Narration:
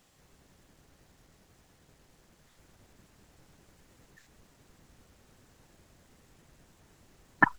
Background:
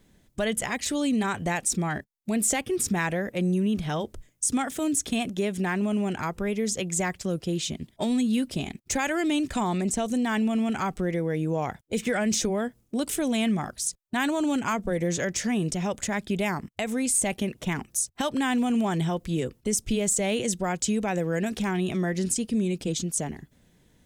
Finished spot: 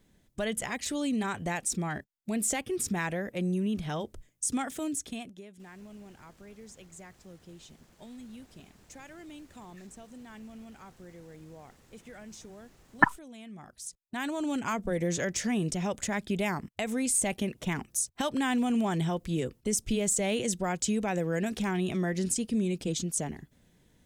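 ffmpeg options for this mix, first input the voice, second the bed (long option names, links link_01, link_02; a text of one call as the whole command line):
ffmpeg -i stem1.wav -i stem2.wav -filter_complex "[0:a]adelay=5600,volume=1dB[link_01];[1:a]volume=14dB,afade=type=out:start_time=4.7:duration=0.74:silence=0.141254,afade=type=in:start_time=13.49:duration=1.46:silence=0.112202[link_02];[link_01][link_02]amix=inputs=2:normalize=0" out.wav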